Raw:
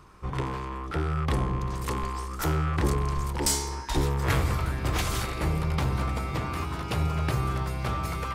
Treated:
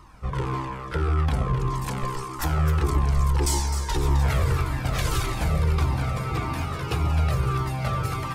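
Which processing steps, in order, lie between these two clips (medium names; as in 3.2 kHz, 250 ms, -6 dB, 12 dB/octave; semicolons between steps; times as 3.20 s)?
peak limiter -19.5 dBFS, peak gain reduction 7 dB; on a send: echo whose repeats swap between lows and highs 130 ms, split 1 kHz, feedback 51%, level -4 dB; on the sum: Shepard-style flanger falling 1.7 Hz; trim +6.5 dB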